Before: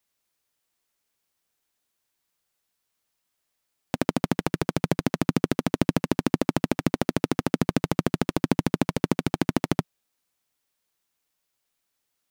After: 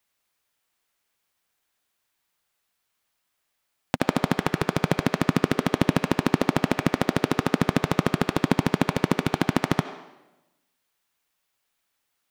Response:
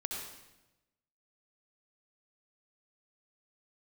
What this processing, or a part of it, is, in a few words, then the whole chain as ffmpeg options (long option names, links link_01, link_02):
filtered reverb send: -filter_complex "[0:a]asplit=2[link_01][link_02];[link_02]highpass=580,lowpass=3900[link_03];[1:a]atrim=start_sample=2205[link_04];[link_03][link_04]afir=irnorm=-1:irlink=0,volume=-4.5dB[link_05];[link_01][link_05]amix=inputs=2:normalize=0,volume=1.5dB"